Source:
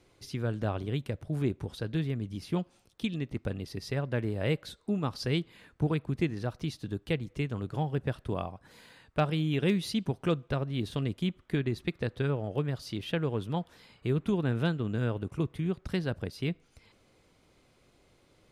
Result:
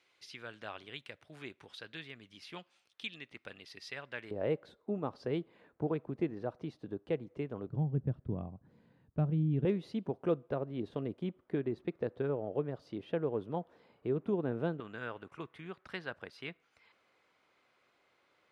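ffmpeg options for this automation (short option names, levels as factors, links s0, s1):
-af "asetnsamples=n=441:p=0,asendcmd='4.31 bandpass f 540;7.69 bandpass f 160;9.65 bandpass f 500;14.8 bandpass f 1500',bandpass=f=2500:t=q:w=0.97:csg=0"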